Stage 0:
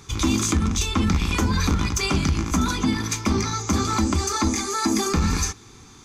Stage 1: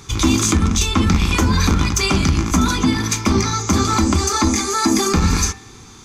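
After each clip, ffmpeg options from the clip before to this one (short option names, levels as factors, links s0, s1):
-af "bandreject=f=71.07:t=h:w=4,bandreject=f=142.14:t=h:w=4,bandreject=f=213.21:t=h:w=4,bandreject=f=284.28:t=h:w=4,bandreject=f=355.35:t=h:w=4,bandreject=f=426.42:t=h:w=4,bandreject=f=497.49:t=h:w=4,bandreject=f=568.56:t=h:w=4,bandreject=f=639.63:t=h:w=4,bandreject=f=710.7:t=h:w=4,bandreject=f=781.77:t=h:w=4,bandreject=f=852.84:t=h:w=4,bandreject=f=923.91:t=h:w=4,bandreject=f=994.98:t=h:w=4,bandreject=f=1066.05:t=h:w=4,bandreject=f=1137.12:t=h:w=4,bandreject=f=1208.19:t=h:w=4,bandreject=f=1279.26:t=h:w=4,bandreject=f=1350.33:t=h:w=4,bandreject=f=1421.4:t=h:w=4,bandreject=f=1492.47:t=h:w=4,bandreject=f=1563.54:t=h:w=4,bandreject=f=1634.61:t=h:w=4,bandreject=f=1705.68:t=h:w=4,bandreject=f=1776.75:t=h:w=4,bandreject=f=1847.82:t=h:w=4,bandreject=f=1918.89:t=h:w=4,bandreject=f=1989.96:t=h:w=4,bandreject=f=2061.03:t=h:w=4,bandreject=f=2132.1:t=h:w=4,bandreject=f=2203.17:t=h:w=4,bandreject=f=2274.24:t=h:w=4,bandreject=f=2345.31:t=h:w=4,bandreject=f=2416.38:t=h:w=4,bandreject=f=2487.45:t=h:w=4,bandreject=f=2558.52:t=h:w=4,bandreject=f=2629.59:t=h:w=4,bandreject=f=2700.66:t=h:w=4,volume=2"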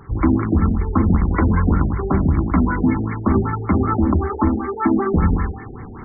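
-af "areverse,acompressor=mode=upward:threshold=0.0794:ratio=2.5,areverse,afftfilt=real='re*lt(b*sr/1024,740*pow(2300/740,0.5+0.5*sin(2*PI*5.2*pts/sr)))':imag='im*lt(b*sr/1024,740*pow(2300/740,0.5+0.5*sin(2*PI*5.2*pts/sr)))':win_size=1024:overlap=0.75"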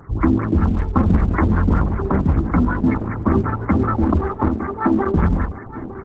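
-af "aecho=1:1:909|1818:0.2|0.0299" -ar 48000 -c:a libopus -b:a 10k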